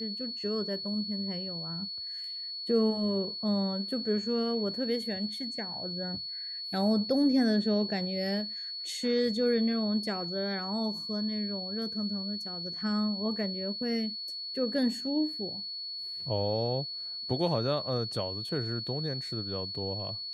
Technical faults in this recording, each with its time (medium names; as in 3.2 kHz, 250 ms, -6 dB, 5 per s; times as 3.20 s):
whine 4.4 kHz -36 dBFS